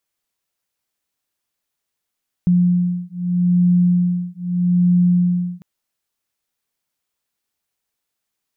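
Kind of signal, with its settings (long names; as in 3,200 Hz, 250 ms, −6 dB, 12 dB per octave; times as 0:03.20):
two tones that beat 177 Hz, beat 0.8 Hz, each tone −16.5 dBFS 3.15 s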